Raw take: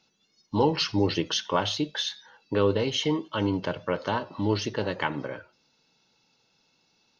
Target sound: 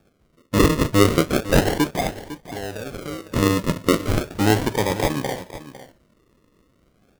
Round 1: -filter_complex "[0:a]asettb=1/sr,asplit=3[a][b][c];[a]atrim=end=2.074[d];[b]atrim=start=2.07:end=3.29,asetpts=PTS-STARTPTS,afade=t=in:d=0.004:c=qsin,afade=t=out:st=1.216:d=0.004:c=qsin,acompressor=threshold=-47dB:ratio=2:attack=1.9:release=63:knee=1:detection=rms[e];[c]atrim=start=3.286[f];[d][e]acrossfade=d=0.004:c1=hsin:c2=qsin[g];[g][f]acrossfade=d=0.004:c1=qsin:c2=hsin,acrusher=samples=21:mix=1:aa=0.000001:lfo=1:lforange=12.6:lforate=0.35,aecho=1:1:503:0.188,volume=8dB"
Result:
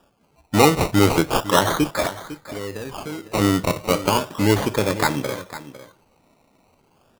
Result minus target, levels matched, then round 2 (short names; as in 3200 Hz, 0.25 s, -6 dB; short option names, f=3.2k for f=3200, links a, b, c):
decimation with a swept rate: distortion -8 dB
-filter_complex "[0:a]asettb=1/sr,asplit=3[a][b][c];[a]atrim=end=2.074[d];[b]atrim=start=2.07:end=3.29,asetpts=PTS-STARTPTS,afade=t=in:d=0.004:c=qsin,afade=t=out:st=1.216:d=0.004:c=qsin,acompressor=threshold=-47dB:ratio=2:attack=1.9:release=63:knee=1:detection=rms[e];[c]atrim=start=3.286[f];[d][e]acrossfade=d=0.004:c1=hsin:c2=qsin[g];[g][f]acrossfade=d=0.004:c1=qsin:c2=hsin,acrusher=samples=44:mix=1:aa=0.000001:lfo=1:lforange=26.4:lforate=0.35,aecho=1:1:503:0.188,volume=8dB"